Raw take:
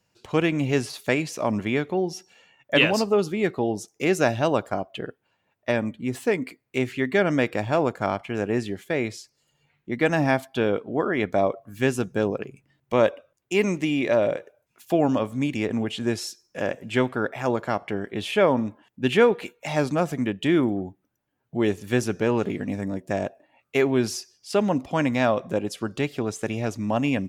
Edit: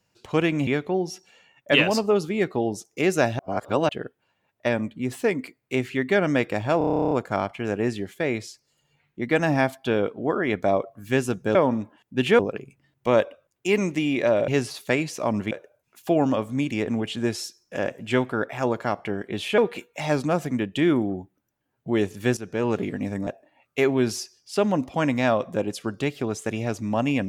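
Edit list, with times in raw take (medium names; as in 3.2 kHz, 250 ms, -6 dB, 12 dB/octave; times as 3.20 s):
0.67–1.70 s: move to 14.34 s
4.42–4.92 s: reverse
7.81 s: stutter 0.03 s, 12 plays
18.41–19.25 s: move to 12.25 s
22.04–22.40 s: fade in, from -13 dB
22.94–23.24 s: delete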